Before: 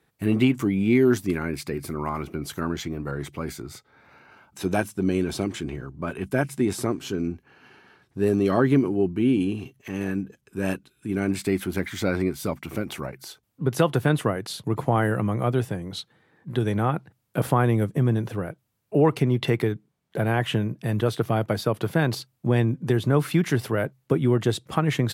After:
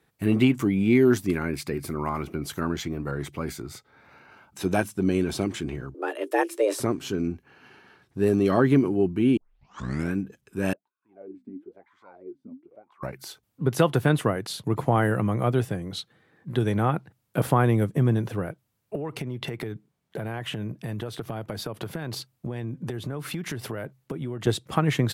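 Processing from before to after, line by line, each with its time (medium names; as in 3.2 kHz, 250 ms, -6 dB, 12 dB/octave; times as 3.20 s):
5.94–6.80 s: frequency shift +200 Hz
9.37 s: tape start 0.78 s
10.73–13.03 s: wah-wah 1 Hz 240–1100 Hz, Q 19
15.63–16.53 s: band-stop 910 Hz, Q 8.7
18.95–24.47 s: compression 8:1, threshold -28 dBFS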